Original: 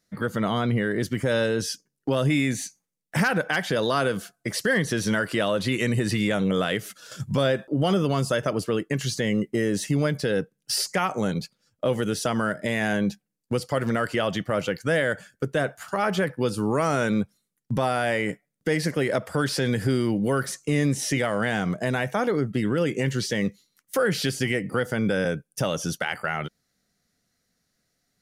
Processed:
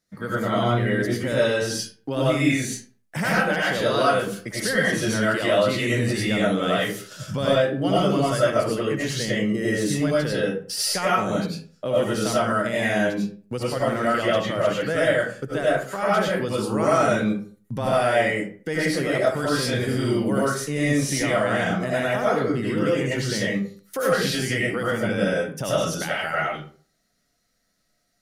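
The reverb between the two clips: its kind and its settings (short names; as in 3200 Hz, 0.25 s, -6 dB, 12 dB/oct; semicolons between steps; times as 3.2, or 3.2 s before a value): digital reverb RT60 0.43 s, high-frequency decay 0.65×, pre-delay 55 ms, DRR -7 dB; gain -4.5 dB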